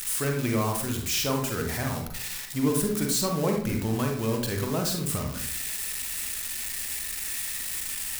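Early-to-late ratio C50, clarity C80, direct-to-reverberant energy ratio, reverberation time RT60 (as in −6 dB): 4.5 dB, 8.5 dB, 1.5 dB, 0.60 s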